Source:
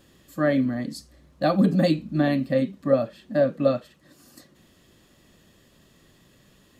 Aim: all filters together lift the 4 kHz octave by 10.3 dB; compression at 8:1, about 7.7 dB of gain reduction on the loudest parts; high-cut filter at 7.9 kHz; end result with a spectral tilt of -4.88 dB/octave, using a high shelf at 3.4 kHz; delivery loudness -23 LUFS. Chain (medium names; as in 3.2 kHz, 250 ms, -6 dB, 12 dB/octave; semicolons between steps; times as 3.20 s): low-pass 7.9 kHz; treble shelf 3.4 kHz +9 dB; peaking EQ 4 kHz +6 dB; compression 8:1, threshold -22 dBFS; trim +5.5 dB